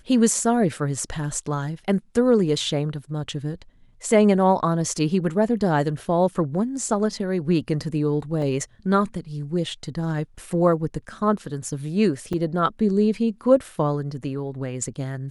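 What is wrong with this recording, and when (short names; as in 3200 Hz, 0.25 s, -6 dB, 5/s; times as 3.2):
8.42 gap 2.4 ms
12.33 gap 4.9 ms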